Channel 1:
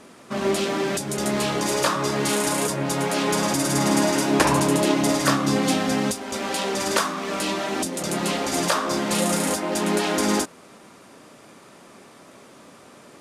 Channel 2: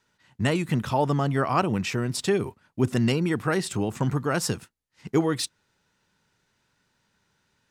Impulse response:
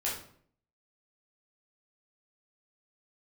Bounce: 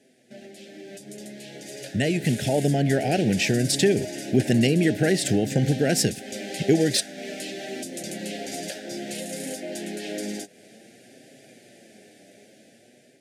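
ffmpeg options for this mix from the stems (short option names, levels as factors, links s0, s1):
-filter_complex "[0:a]acompressor=threshold=0.0398:ratio=6,flanger=delay=7.4:depth=2.8:regen=47:speed=0.53:shape=triangular,volume=0.376[s0];[1:a]acompressor=threshold=0.0158:ratio=2,adelay=1550,volume=1.26[s1];[s0][s1]amix=inputs=2:normalize=0,highpass=110,dynaudnorm=f=770:g=5:m=3.55,asuperstop=centerf=1100:order=8:qfactor=1.3"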